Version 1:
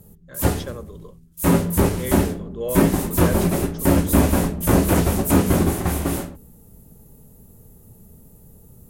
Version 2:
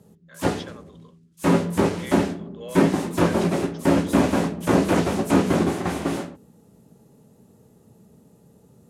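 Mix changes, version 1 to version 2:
speech: add resonant band-pass 3,100 Hz, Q 0.55
master: add band-pass filter 170–5,700 Hz

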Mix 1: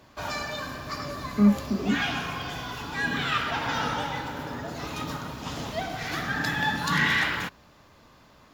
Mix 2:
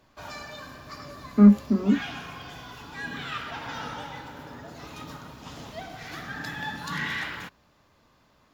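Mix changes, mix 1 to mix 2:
speech +5.0 dB
background −7.5 dB

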